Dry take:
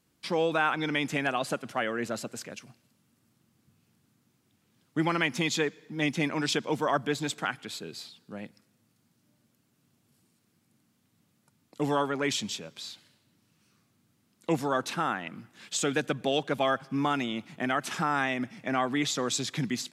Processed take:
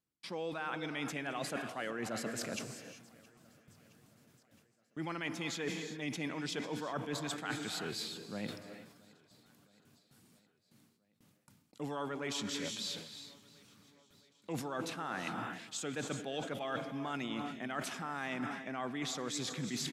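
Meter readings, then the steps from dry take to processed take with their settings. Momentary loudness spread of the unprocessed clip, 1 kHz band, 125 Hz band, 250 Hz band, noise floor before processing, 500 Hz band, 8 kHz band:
14 LU, −11.0 dB, −8.5 dB, −8.5 dB, −71 dBFS, −10.0 dB, −6.5 dB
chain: reverb whose tail is shaped and stops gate 410 ms rising, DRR 11 dB
reversed playback
downward compressor 10 to 1, threshold −39 dBFS, peak gain reduction 18 dB
reversed playback
noise gate with hold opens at −58 dBFS
repeating echo 668 ms, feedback 60%, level −24 dB
level that may fall only so fast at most 83 dB per second
level +3 dB

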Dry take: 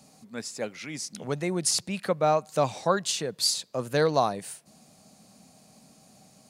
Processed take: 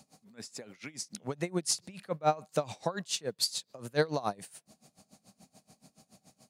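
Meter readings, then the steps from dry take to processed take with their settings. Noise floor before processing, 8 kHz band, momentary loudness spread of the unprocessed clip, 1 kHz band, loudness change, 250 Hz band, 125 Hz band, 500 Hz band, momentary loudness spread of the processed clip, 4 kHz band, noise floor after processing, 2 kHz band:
−58 dBFS, −6.0 dB, 13 LU, −7.0 dB, −6.5 dB, −6.5 dB, −6.0 dB, −7.5 dB, 14 LU, −6.0 dB, −77 dBFS, −5.5 dB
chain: tremolo with a sine in dB 7 Hz, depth 23 dB

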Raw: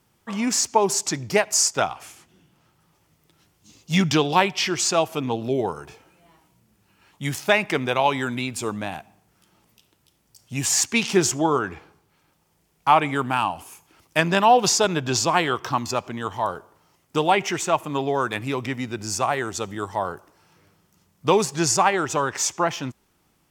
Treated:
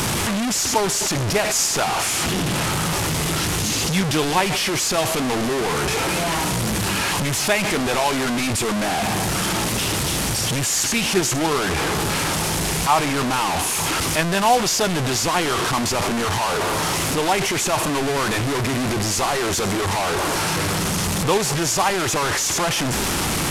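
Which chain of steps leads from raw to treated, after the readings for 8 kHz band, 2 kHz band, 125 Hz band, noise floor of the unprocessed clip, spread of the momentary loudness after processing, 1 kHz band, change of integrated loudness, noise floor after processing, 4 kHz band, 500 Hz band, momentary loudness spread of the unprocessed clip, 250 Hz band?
+5.0 dB, +4.5 dB, +6.5 dB, −66 dBFS, 3 LU, +1.5 dB, +2.5 dB, −22 dBFS, +6.5 dB, +1.5 dB, 11 LU, +4.0 dB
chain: linear delta modulator 64 kbit/s, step −14 dBFS
level −1.5 dB

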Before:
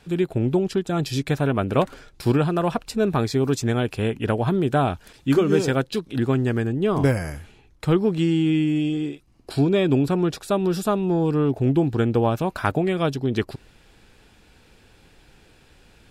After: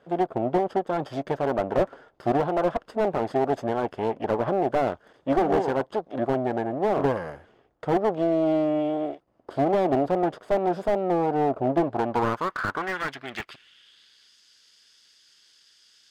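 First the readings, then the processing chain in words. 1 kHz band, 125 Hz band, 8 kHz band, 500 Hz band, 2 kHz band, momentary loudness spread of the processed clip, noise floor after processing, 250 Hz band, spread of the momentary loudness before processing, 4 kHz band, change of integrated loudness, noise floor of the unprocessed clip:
+3.0 dB, −12.5 dB, below −10 dB, −1.0 dB, −2.5 dB, 8 LU, −62 dBFS, −6.0 dB, 7 LU, −9.5 dB, −3.5 dB, −55 dBFS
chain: lower of the sound and its delayed copy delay 0.61 ms
band-pass filter sweep 660 Hz → 5,100 Hz, 0:11.84–0:14.36
slew-rate limiting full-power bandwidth 28 Hz
level +9 dB

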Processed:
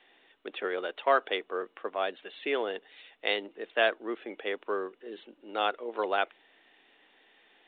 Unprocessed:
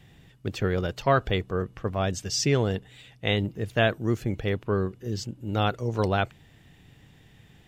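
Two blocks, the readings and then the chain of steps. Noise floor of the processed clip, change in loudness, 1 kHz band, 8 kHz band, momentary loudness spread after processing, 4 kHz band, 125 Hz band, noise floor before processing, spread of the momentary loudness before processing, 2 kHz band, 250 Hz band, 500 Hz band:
−66 dBFS, −4.5 dB, −1.5 dB, below −40 dB, 13 LU, −3.5 dB, below −35 dB, −56 dBFS, 9 LU, −1.0 dB, −12.0 dB, −3.5 dB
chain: Bessel high-pass filter 520 Hz, order 8
high-shelf EQ 2,700 Hz −2 dB
mu-law 64 kbit/s 8,000 Hz

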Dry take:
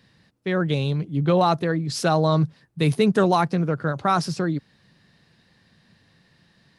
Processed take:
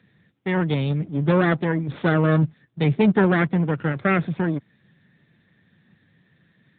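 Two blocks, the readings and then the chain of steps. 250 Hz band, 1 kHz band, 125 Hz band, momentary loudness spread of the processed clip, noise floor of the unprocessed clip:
+2.5 dB, −5.0 dB, +1.5 dB, 7 LU, −62 dBFS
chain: lower of the sound and its delayed copy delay 0.52 ms
level +1.5 dB
AMR narrowband 10.2 kbit/s 8,000 Hz

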